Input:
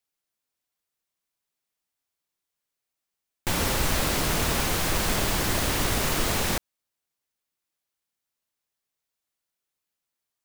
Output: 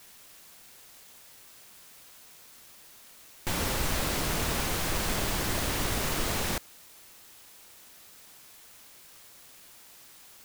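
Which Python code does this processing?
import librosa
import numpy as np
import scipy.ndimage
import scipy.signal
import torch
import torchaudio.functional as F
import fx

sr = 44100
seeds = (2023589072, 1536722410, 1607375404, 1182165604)

y = fx.quant_dither(x, sr, seeds[0], bits=8, dither='triangular')
y = F.gain(torch.from_numpy(y), -4.5).numpy()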